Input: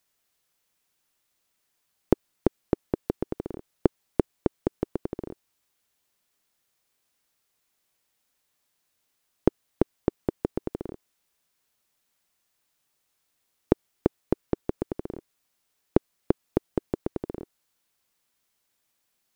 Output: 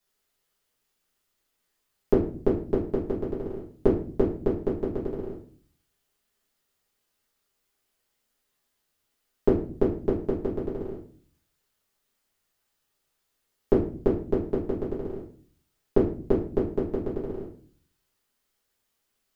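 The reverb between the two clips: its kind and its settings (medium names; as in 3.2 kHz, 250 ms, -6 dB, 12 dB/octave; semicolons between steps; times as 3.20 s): simulated room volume 40 m³, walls mixed, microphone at 1.5 m; trim -9 dB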